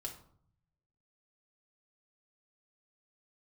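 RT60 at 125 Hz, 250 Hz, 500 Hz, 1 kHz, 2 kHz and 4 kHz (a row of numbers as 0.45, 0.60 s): 1.3, 0.85, 0.60, 0.60, 0.40, 0.35 s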